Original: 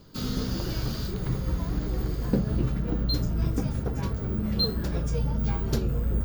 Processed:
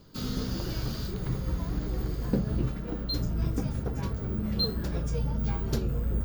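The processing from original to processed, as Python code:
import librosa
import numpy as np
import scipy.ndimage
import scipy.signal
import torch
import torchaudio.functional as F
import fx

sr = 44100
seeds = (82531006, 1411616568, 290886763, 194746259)

y = fx.peak_eq(x, sr, hz=90.0, db=-8.5, octaves=2.0, at=(2.71, 3.15))
y = y * librosa.db_to_amplitude(-2.5)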